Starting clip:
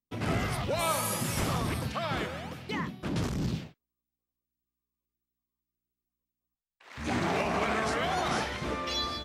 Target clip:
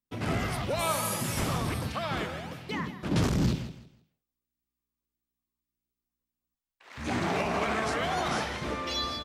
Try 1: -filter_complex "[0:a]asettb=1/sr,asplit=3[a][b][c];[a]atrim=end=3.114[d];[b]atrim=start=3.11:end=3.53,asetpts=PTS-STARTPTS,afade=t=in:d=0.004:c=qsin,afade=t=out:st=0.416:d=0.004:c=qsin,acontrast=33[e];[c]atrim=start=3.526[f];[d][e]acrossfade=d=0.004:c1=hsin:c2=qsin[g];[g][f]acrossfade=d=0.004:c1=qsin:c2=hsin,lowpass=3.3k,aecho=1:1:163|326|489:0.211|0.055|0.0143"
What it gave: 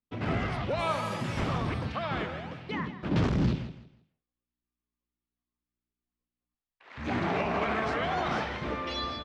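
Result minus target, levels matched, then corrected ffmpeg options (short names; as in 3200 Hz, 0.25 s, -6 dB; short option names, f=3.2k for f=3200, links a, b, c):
4000 Hz band -3.5 dB
-filter_complex "[0:a]asettb=1/sr,asplit=3[a][b][c];[a]atrim=end=3.114[d];[b]atrim=start=3.11:end=3.53,asetpts=PTS-STARTPTS,afade=t=in:d=0.004:c=qsin,afade=t=out:st=0.416:d=0.004:c=qsin,acontrast=33[e];[c]atrim=start=3.526[f];[d][e]acrossfade=d=0.004:c1=hsin:c2=qsin[g];[g][f]acrossfade=d=0.004:c1=qsin:c2=hsin,aecho=1:1:163|326|489:0.211|0.055|0.0143"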